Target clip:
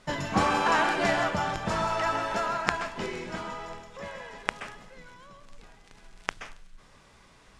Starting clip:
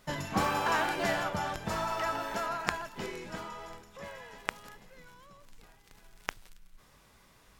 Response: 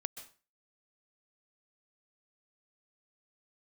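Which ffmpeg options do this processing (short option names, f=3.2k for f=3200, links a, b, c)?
-filter_complex "[0:a]lowpass=f=9.7k:w=0.5412,lowpass=f=9.7k:w=1.3066,highshelf=f=6.8k:g=-5,bandreject=f=50:t=h:w=6,bandreject=f=100:t=h:w=6,bandreject=f=150:t=h:w=6[a];[1:a]atrim=start_sample=2205[b];[a][b]afir=irnorm=-1:irlink=0,volume=6.5dB"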